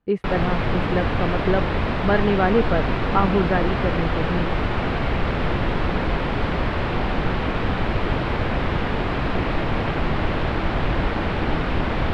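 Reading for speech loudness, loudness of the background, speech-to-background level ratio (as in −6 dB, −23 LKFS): −24.5 LKFS, −24.0 LKFS, −0.5 dB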